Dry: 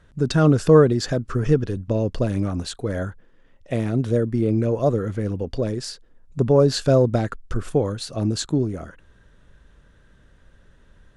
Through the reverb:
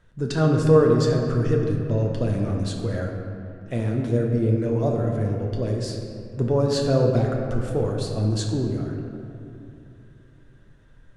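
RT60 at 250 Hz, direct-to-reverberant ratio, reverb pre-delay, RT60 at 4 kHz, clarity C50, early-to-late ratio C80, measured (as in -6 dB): 3.4 s, 0.0 dB, 8 ms, 1.6 s, 2.5 dB, 4.0 dB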